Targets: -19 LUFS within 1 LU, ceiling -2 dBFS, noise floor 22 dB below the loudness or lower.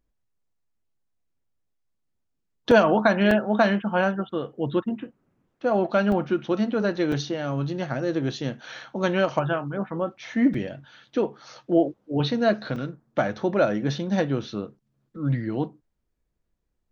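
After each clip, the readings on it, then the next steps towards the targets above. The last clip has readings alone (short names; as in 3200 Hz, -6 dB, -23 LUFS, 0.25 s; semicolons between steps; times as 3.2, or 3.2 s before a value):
dropouts 6; longest dropout 3.2 ms; loudness -25.0 LUFS; peak -5.5 dBFS; loudness target -19.0 LUFS
-> interpolate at 2.71/3.31/6.12/7.12/10.54/12.76, 3.2 ms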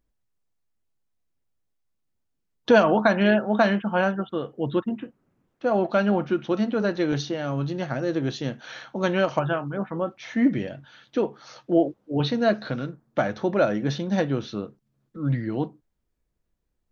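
dropouts 0; loudness -24.5 LUFS; peak -5.5 dBFS; loudness target -19.0 LUFS
-> gain +5.5 dB; limiter -2 dBFS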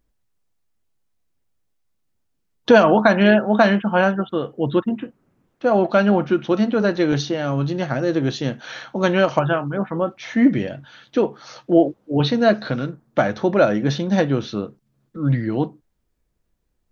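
loudness -19.5 LUFS; peak -2.0 dBFS; noise floor -70 dBFS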